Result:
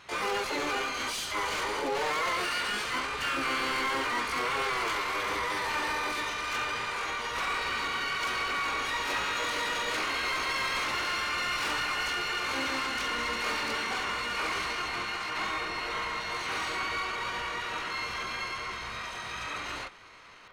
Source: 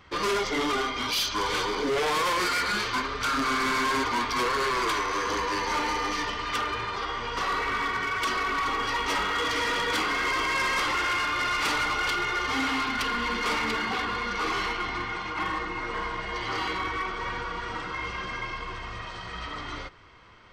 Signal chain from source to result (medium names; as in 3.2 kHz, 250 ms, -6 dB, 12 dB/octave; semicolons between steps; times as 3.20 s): overdrive pedal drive 14 dB, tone 1.9 kHz, clips at -21 dBFS; harmony voices +4 st -5 dB, +12 st -2 dB; trim -6.5 dB